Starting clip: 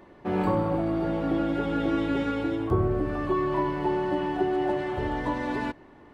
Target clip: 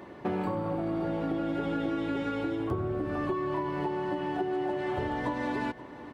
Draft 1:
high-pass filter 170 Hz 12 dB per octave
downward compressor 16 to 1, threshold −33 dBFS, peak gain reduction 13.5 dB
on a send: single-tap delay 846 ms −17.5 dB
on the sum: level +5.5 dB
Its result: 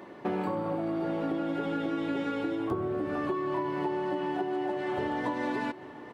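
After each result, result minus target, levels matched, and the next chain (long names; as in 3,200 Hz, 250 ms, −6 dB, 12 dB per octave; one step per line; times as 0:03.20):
echo 315 ms late; 125 Hz band −4.0 dB
high-pass filter 170 Hz 12 dB per octave
downward compressor 16 to 1, threshold −33 dBFS, peak gain reduction 13.5 dB
on a send: single-tap delay 531 ms −17.5 dB
on the sum: level +5.5 dB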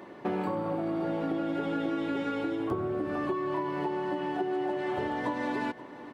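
125 Hz band −4.0 dB
high-pass filter 77 Hz 12 dB per octave
downward compressor 16 to 1, threshold −33 dBFS, peak gain reduction 14.5 dB
on a send: single-tap delay 531 ms −17.5 dB
on the sum: level +5.5 dB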